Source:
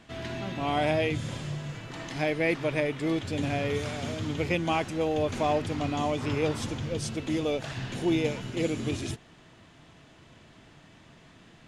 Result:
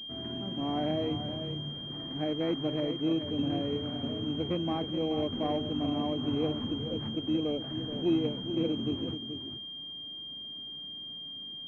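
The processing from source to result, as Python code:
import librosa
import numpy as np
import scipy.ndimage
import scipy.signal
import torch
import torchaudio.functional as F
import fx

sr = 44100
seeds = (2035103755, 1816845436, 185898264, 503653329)

p1 = fx.peak_eq(x, sr, hz=260.0, db=10.5, octaves=1.2)
p2 = fx.notch(p1, sr, hz=930.0, q=20.0)
p3 = p2 + fx.echo_single(p2, sr, ms=428, db=-9.0, dry=0)
p4 = fx.pwm(p3, sr, carrier_hz=3200.0)
y = p4 * 10.0 ** (-8.5 / 20.0)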